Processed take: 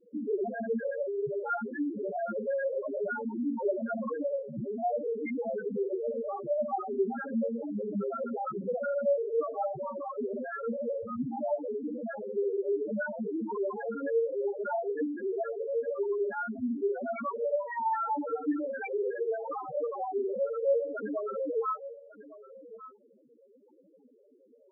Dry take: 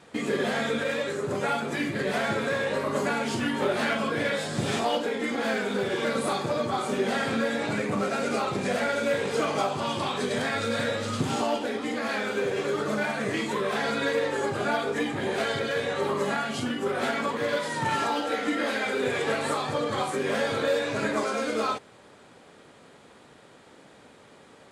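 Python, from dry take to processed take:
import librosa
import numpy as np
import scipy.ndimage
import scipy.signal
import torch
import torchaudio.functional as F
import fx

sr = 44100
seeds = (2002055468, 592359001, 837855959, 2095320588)

y = fx.graphic_eq(x, sr, hz=(125, 4000, 8000), db=(-5, -4, -10))
y = y + 10.0 ** (-16.5 / 20.0) * np.pad(y, (int(1153 * sr / 1000.0), 0))[:len(y)]
y = fx.spec_topn(y, sr, count=2)
y = y * librosa.db_to_amplitude(2.0)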